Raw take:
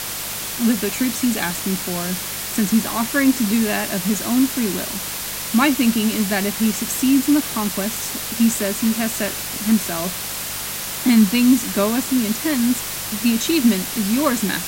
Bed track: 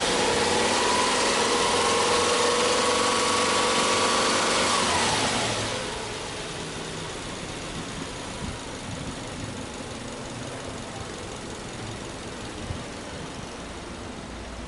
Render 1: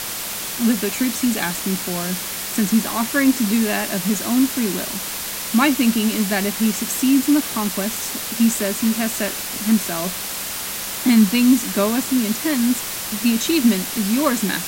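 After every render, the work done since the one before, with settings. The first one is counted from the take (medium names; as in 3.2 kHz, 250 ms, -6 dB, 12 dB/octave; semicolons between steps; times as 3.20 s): de-hum 50 Hz, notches 3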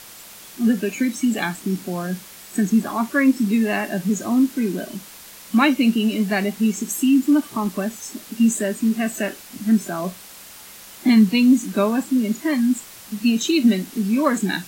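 noise print and reduce 14 dB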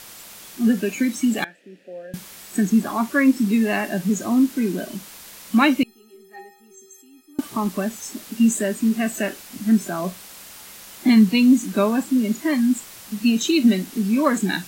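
1.44–2.14 s: vowel filter e; 5.83–7.39 s: inharmonic resonator 380 Hz, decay 0.65 s, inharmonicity 0.03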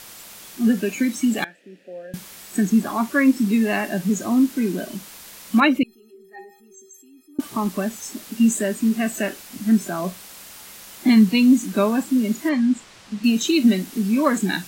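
5.60–7.40 s: resonances exaggerated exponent 1.5; 12.49–13.24 s: distance through air 94 m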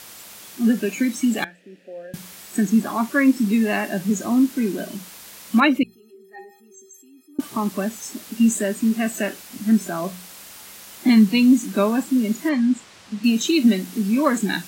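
high-pass 46 Hz; hum notches 60/120/180 Hz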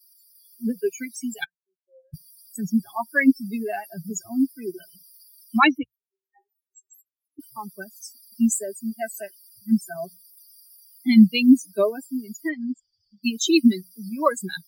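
expander on every frequency bin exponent 3; level rider gain up to 5 dB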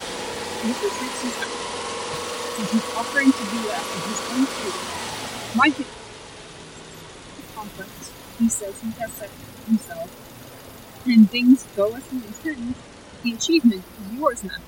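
add bed track -7 dB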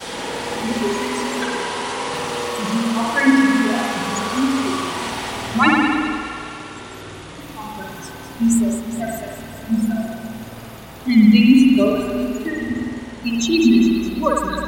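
on a send: echo whose repeats swap between lows and highs 103 ms, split 1.4 kHz, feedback 78%, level -8 dB; on the sum: spring tank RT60 1.7 s, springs 52 ms, chirp 60 ms, DRR -2 dB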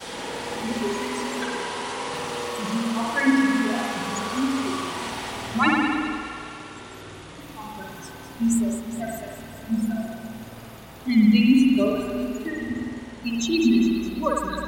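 trim -5.5 dB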